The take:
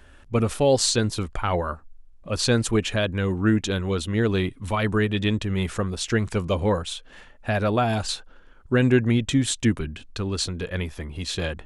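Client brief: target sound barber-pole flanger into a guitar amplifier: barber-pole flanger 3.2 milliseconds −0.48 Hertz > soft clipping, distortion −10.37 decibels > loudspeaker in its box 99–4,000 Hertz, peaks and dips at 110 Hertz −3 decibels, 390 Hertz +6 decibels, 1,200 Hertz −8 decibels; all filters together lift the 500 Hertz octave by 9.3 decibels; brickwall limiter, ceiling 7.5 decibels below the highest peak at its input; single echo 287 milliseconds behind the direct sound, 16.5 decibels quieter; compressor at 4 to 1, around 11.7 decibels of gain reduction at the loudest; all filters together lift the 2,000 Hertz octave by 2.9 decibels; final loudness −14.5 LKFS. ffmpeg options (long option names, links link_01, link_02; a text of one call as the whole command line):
ffmpeg -i in.wav -filter_complex "[0:a]equalizer=frequency=500:width_type=o:gain=8,equalizer=frequency=2000:width_type=o:gain=4.5,acompressor=threshold=-23dB:ratio=4,alimiter=limit=-18dB:level=0:latency=1,aecho=1:1:287:0.15,asplit=2[link_01][link_02];[link_02]adelay=3.2,afreqshift=-0.48[link_03];[link_01][link_03]amix=inputs=2:normalize=1,asoftclip=threshold=-29.5dB,highpass=99,equalizer=frequency=110:width_type=q:width=4:gain=-3,equalizer=frequency=390:width_type=q:width=4:gain=6,equalizer=frequency=1200:width_type=q:width=4:gain=-8,lowpass=frequency=4000:width=0.5412,lowpass=frequency=4000:width=1.3066,volume=20.5dB" out.wav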